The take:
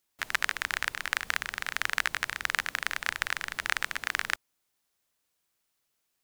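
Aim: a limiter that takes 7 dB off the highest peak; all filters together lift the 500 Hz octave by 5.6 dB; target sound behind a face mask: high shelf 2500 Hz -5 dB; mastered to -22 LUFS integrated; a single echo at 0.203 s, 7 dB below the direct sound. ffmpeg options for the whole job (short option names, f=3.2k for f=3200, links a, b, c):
-af "equalizer=f=500:t=o:g=7.5,alimiter=limit=-11.5dB:level=0:latency=1,highshelf=f=2.5k:g=-5,aecho=1:1:203:0.447,volume=13dB"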